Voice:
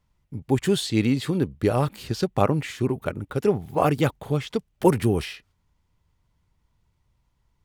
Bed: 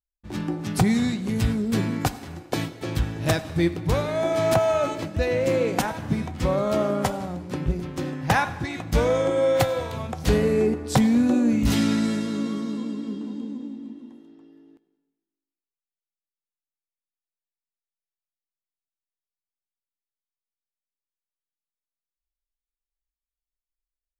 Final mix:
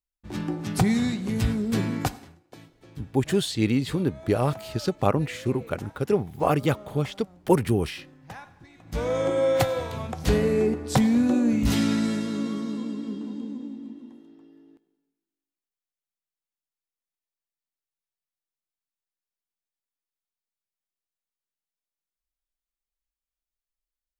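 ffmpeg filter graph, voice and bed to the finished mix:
-filter_complex "[0:a]adelay=2650,volume=0.841[s0];[1:a]volume=7.94,afade=t=out:st=2.01:d=0.36:silence=0.105925,afade=t=in:st=8.79:d=0.48:silence=0.105925[s1];[s0][s1]amix=inputs=2:normalize=0"

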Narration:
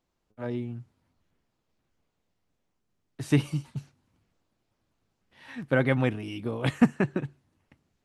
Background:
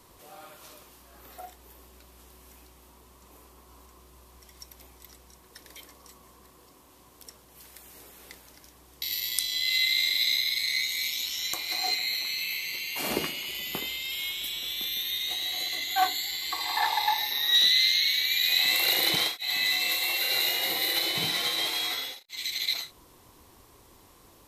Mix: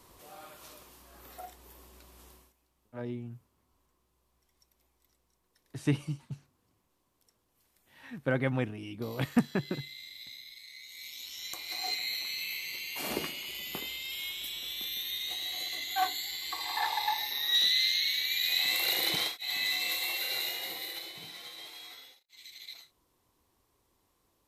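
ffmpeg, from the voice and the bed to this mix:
-filter_complex "[0:a]adelay=2550,volume=0.531[s0];[1:a]volume=5.31,afade=t=out:st=2.3:d=0.23:silence=0.105925,afade=t=in:st=10.8:d=1.23:silence=0.149624,afade=t=out:st=20.03:d=1.14:silence=0.237137[s1];[s0][s1]amix=inputs=2:normalize=0"

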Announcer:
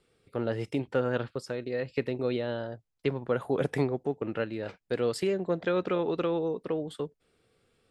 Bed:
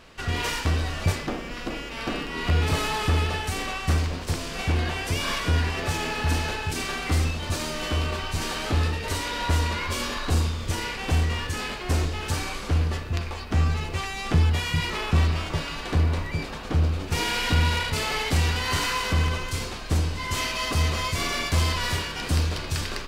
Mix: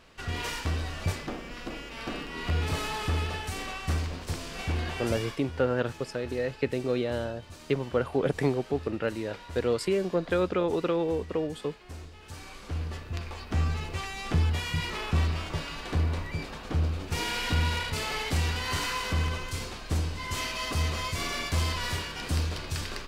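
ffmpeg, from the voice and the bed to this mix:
-filter_complex "[0:a]adelay=4650,volume=1.19[s0];[1:a]volume=2.51,afade=t=out:st=5.06:d=0.31:silence=0.223872,afade=t=in:st=12.21:d=1.3:silence=0.199526[s1];[s0][s1]amix=inputs=2:normalize=0"

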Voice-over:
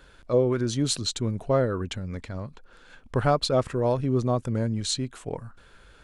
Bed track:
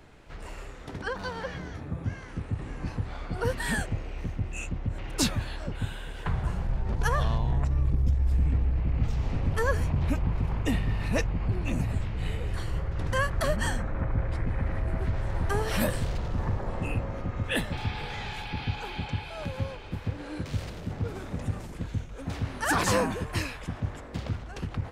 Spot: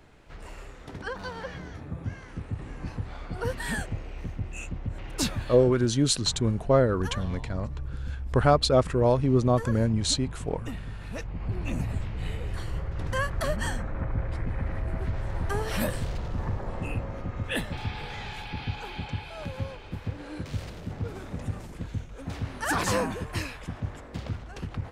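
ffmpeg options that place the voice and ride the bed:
-filter_complex "[0:a]adelay=5200,volume=1.26[s0];[1:a]volume=2.11,afade=t=out:st=5.63:d=0.23:silence=0.398107,afade=t=in:st=11.17:d=0.45:silence=0.375837[s1];[s0][s1]amix=inputs=2:normalize=0"

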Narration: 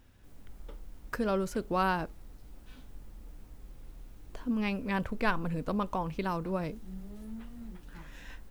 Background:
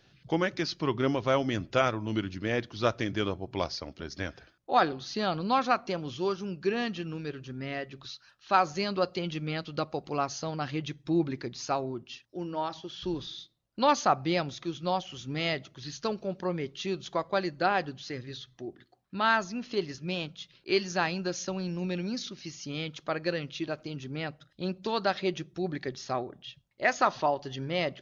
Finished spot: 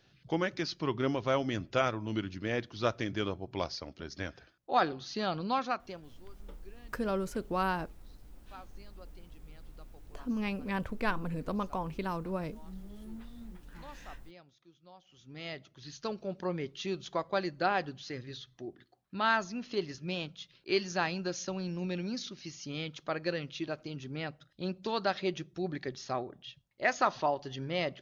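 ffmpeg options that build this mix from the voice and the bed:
-filter_complex "[0:a]adelay=5800,volume=0.75[s0];[1:a]volume=10,afade=t=out:st=5.41:d=0.78:silence=0.0707946,afade=t=in:st=15:d=1.44:silence=0.0668344[s1];[s0][s1]amix=inputs=2:normalize=0"

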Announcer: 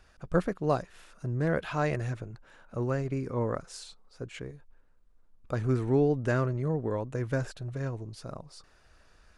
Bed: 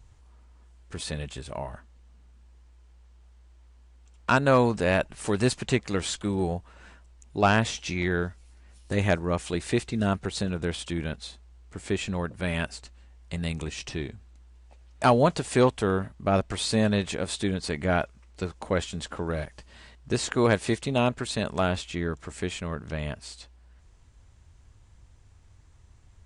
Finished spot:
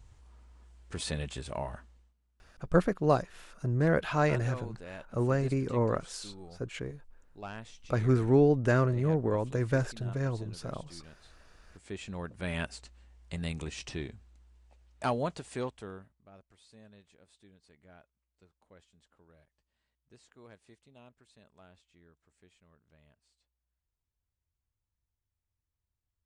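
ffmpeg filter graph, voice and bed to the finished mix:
-filter_complex "[0:a]adelay=2400,volume=1.26[s0];[1:a]volume=5.62,afade=t=out:st=1.84:d=0.3:silence=0.1,afade=t=in:st=11.63:d=1:silence=0.149624,afade=t=out:st=13.98:d=2.3:silence=0.0421697[s1];[s0][s1]amix=inputs=2:normalize=0"

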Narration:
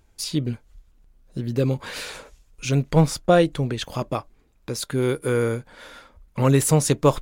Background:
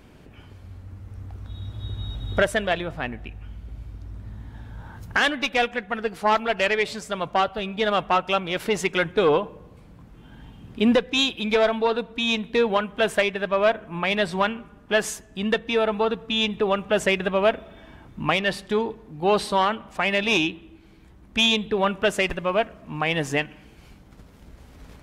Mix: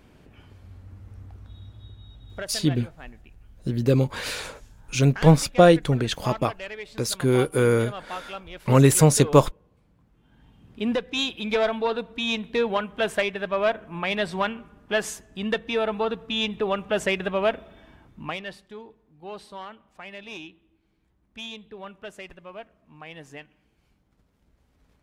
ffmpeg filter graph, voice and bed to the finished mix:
-filter_complex "[0:a]adelay=2300,volume=1.26[s0];[1:a]volume=2.37,afade=t=out:st=1.06:d=0.94:silence=0.298538,afade=t=in:st=10.22:d=1.31:silence=0.266073,afade=t=out:st=17.55:d=1.13:silence=0.177828[s1];[s0][s1]amix=inputs=2:normalize=0"

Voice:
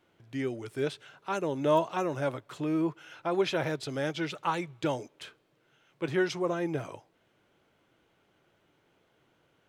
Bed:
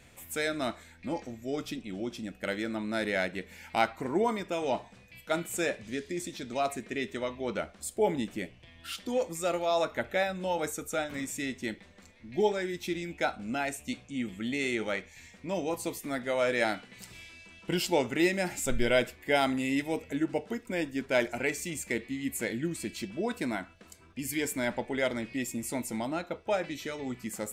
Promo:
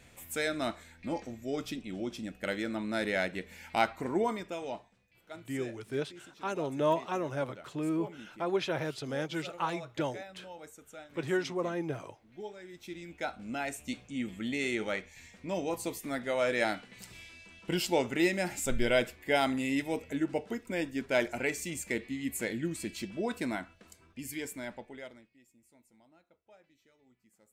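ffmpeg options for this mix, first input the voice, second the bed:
-filter_complex "[0:a]adelay=5150,volume=0.708[s0];[1:a]volume=5.01,afade=t=out:st=4.08:d=0.89:silence=0.16788,afade=t=in:st=12.59:d=1.36:silence=0.177828,afade=t=out:st=23.52:d=1.78:silence=0.0354813[s1];[s0][s1]amix=inputs=2:normalize=0"

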